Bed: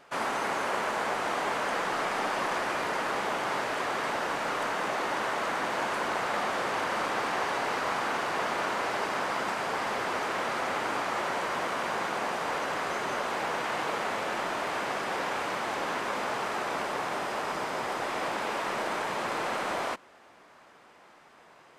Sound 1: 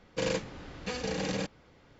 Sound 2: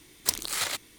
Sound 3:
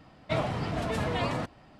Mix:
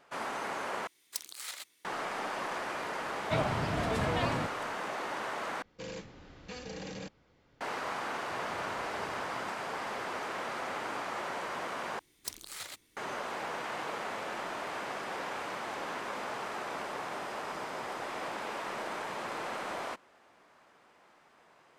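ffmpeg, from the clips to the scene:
ffmpeg -i bed.wav -i cue0.wav -i cue1.wav -i cue2.wav -filter_complex "[2:a]asplit=2[link_01][link_02];[3:a]asplit=2[link_03][link_04];[0:a]volume=-6.5dB[link_05];[link_01]highpass=frequency=970:poles=1[link_06];[1:a]alimiter=level_in=1.5dB:limit=-24dB:level=0:latency=1:release=25,volume=-1.5dB[link_07];[link_04]acompressor=threshold=-36dB:ratio=6:attack=3.2:release=140:knee=1:detection=peak[link_08];[link_05]asplit=4[link_09][link_10][link_11][link_12];[link_09]atrim=end=0.874[link_13];[link_06]atrim=end=0.98,asetpts=PTS-STARTPTS,volume=-12dB[link_14];[link_10]atrim=start=1.846:end=5.624[link_15];[link_07]atrim=end=1.99,asetpts=PTS-STARTPTS,volume=-7.5dB[link_16];[link_11]atrim=start=7.606:end=11.994[link_17];[link_02]atrim=end=0.98,asetpts=PTS-STARTPTS,volume=-13.5dB[link_18];[link_12]atrim=start=12.966[link_19];[link_03]atrim=end=1.79,asetpts=PTS-STARTPTS,volume=-2dB,afade=type=in:duration=0.004:curve=hsin,afade=type=out:start_time=1.786:duration=0.004:curve=hsin,adelay=3010[link_20];[link_08]atrim=end=1.79,asetpts=PTS-STARTPTS,volume=-12dB,afade=type=in:duration=0.004:curve=hsin,afade=type=out:start_time=1.786:duration=0.004:curve=hsin,adelay=353682S[link_21];[link_13][link_14]acrossfade=duration=0.004:curve1=hsin:curve2=hsin[link_22];[link_22][link_15]acrossfade=duration=0.004:curve1=hsin:curve2=hsin[link_23];[link_23][link_16]acrossfade=duration=0.004:curve1=hsin:curve2=hsin[link_24];[link_24][link_17]acrossfade=duration=0.004:curve1=hsin:curve2=hsin[link_25];[link_25][link_18]acrossfade=duration=0.004:curve1=hsin:curve2=hsin[link_26];[link_26][link_19]acrossfade=duration=0.004:curve1=hsin:curve2=hsin[link_27];[link_27][link_20][link_21]amix=inputs=3:normalize=0" out.wav

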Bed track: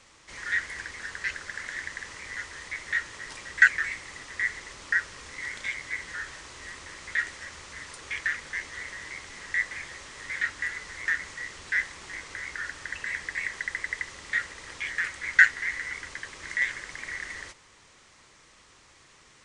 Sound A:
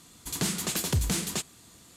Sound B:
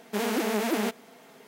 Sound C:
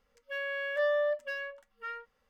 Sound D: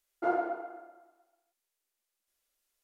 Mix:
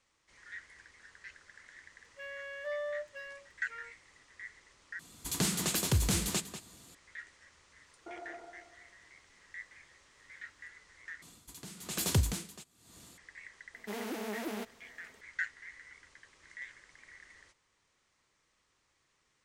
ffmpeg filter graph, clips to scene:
ffmpeg -i bed.wav -i cue0.wav -i cue1.wav -i cue2.wav -i cue3.wav -filter_complex "[1:a]asplit=2[link_01][link_02];[0:a]volume=-19dB[link_03];[link_01]asplit=2[link_04][link_05];[link_05]adelay=192.4,volume=-10dB,highshelf=frequency=4000:gain=-4.33[link_06];[link_04][link_06]amix=inputs=2:normalize=0[link_07];[4:a]acompressor=threshold=-33dB:ratio=6:attack=3.2:release=140:knee=1:detection=peak[link_08];[link_02]aeval=exprs='val(0)*pow(10,-19*(0.5-0.5*cos(2*PI*1.1*n/s))/20)':channel_layout=same[link_09];[2:a]aeval=exprs='0.141*(abs(mod(val(0)/0.141+3,4)-2)-1)':channel_layout=same[link_10];[link_03]asplit=3[link_11][link_12][link_13];[link_11]atrim=end=4.994[link_14];[link_07]atrim=end=1.96,asetpts=PTS-STARTPTS,volume=-2dB[link_15];[link_12]atrim=start=6.946:end=11.224[link_16];[link_09]atrim=end=1.96,asetpts=PTS-STARTPTS,volume=-0.5dB[link_17];[link_13]atrim=start=13.176[link_18];[3:a]atrim=end=2.29,asetpts=PTS-STARTPTS,volume=-9dB,afade=type=in:duration=0.004:curve=hsin,afade=type=out:start_time=2.286:duration=0.004:curve=hsin,adelay=1880[link_19];[link_08]atrim=end=2.83,asetpts=PTS-STARTPTS,volume=-10dB,afade=type=in:duration=0.004:curve=hsin,afade=type=out:start_time=2.826:duration=0.004:curve=hsin,adelay=7840[link_20];[link_10]atrim=end=1.47,asetpts=PTS-STARTPTS,volume=-11.5dB,afade=type=in:duration=0.004:curve=hsin,afade=type=out:start_time=1.466:duration=0.004:curve=hsin,adelay=13740[link_21];[link_14][link_15]acrossfade=duration=0.004:curve1=hsin:curve2=hsin[link_22];[link_22][link_16]acrossfade=duration=0.004:curve1=hsin:curve2=hsin[link_23];[link_23][link_17]acrossfade=duration=0.004:curve1=hsin:curve2=hsin[link_24];[link_24][link_18]acrossfade=duration=0.004:curve1=hsin:curve2=hsin[link_25];[link_25][link_19][link_20][link_21]amix=inputs=4:normalize=0" out.wav

